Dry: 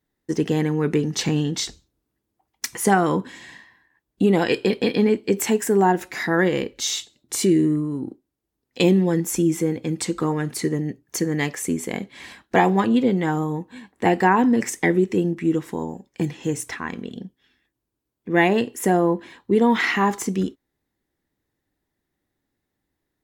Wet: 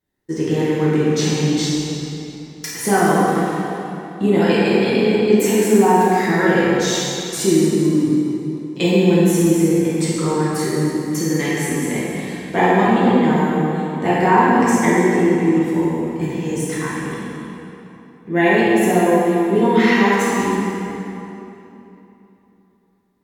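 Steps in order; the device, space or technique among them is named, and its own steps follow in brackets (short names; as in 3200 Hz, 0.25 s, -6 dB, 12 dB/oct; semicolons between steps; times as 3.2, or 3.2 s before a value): tunnel (flutter echo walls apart 8.6 m, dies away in 0.25 s; reverb RT60 3.2 s, pre-delay 3 ms, DRR -8.5 dB); gain -4.5 dB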